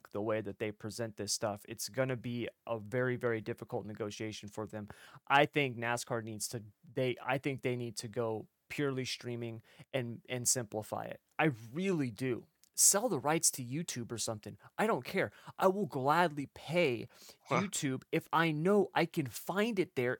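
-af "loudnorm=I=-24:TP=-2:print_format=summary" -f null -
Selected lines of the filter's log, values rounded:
Input Integrated:    -34.4 LUFS
Input True Peak:     -12.1 dBTP
Input LRA:             5.7 LU
Input Threshold:     -44.6 LUFS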